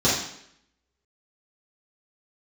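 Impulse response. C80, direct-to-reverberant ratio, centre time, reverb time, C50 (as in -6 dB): 6.0 dB, -9.5 dB, 51 ms, 0.70 s, 2.0 dB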